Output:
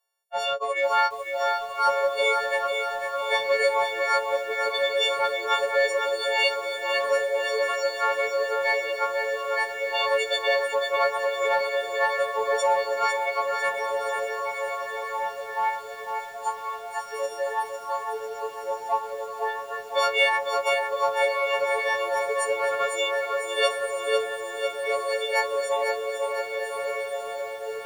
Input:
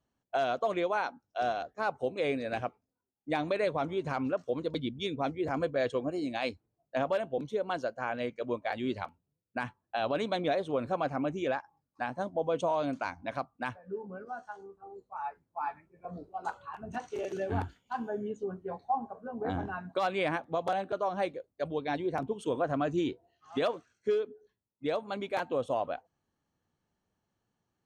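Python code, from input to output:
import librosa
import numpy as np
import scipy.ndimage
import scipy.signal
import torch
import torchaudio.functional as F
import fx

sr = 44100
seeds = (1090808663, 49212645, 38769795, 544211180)

p1 = fx.freq_snap(x, sr, grid_st=4)
p2 = scipy.signal.sosfilt(scipy.signal.cheby1(6, 1.0, 460.0, 'highpass', fs=sr, output='sos'), p1)
p3 = fx.echo_diffused(p2, sr, ms=1408, feedback_pct=59, wet_db=-3.5)
p4 = 10.0 ** (-32.0 / 20.0) * np.tanh(p3 / 10.0 ** (-32.0 / 20.0))
p5 = p3 + (p4 * 10.0 ** (-11.5 / 20.0))
p6 = fx.noise_reduce_blind(p5, sr, reduce_db=10)
p7 = fx.echo_crushed(p6, sr, ms=501, feedback_pct=55, bits=9, wet_db=-6.0)
y = p7 * 10.0 ** (6.5 / 20.0)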